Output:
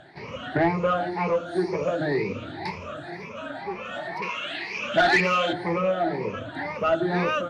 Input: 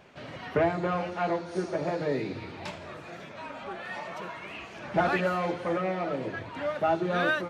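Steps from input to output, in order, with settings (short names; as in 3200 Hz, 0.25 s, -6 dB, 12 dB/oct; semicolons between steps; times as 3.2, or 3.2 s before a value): moving spectral ripple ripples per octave 0.83, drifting +2 Hz, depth 19 dB; 4.22–5.53 weighting filter D; soft clip -15 dBFS, distortion -14 dB; air absorption 57 m; gain +2 dB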